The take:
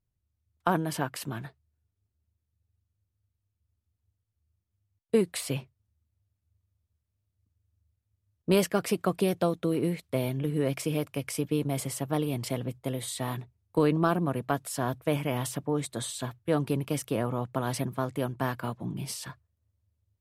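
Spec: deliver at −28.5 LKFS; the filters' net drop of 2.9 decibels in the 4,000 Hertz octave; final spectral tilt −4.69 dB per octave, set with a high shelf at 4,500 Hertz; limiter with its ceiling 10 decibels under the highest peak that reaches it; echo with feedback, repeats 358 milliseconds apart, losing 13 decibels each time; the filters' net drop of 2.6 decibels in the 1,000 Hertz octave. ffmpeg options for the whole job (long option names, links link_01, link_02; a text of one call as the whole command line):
ffmpeg -i in.wav -af "equalizer=frequency=1000:width_type=o:gain=-3.5,equalizer=frequency=4000:width_type=o:gain=-8,highshelf=frequency=4500:gain=7.5,alimiter=limit=-21.5dB:level=0:latency=1,aecho=1:1:358|716|1074:0.224|0.0493|0.0108,volume=5dB" out.wav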